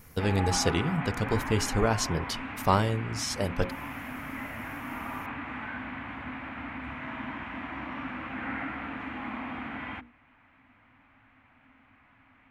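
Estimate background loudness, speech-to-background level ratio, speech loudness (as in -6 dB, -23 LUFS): -36.5 LUFS, 7.5 dB, -29.0 LUFS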